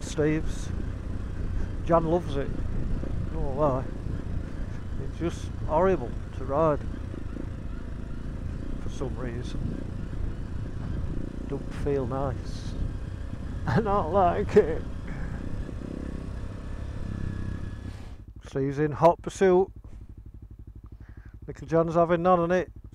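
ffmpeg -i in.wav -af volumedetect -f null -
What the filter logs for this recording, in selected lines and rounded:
mean_volume: -27.9 dB
max_volume: -7.9 dB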